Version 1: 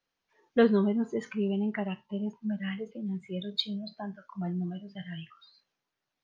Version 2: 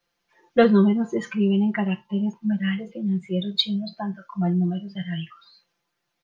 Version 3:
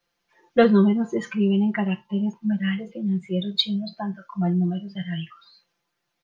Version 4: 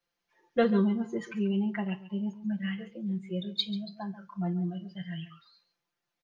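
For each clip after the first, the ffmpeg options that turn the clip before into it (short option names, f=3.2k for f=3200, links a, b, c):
-af "aecho=1:1:5.8:0.87,volume=5.5dB"
-af anull
-af "aecho=1:1:138:0.178,volume=-8.5dB"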